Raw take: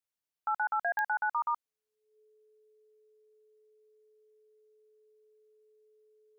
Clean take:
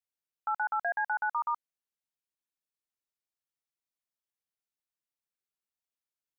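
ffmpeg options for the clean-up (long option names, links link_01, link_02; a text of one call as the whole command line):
ffmpeg -i in.wav -af "adeclick=threshold=4,bandreject=frequency=430:width=30" out.wav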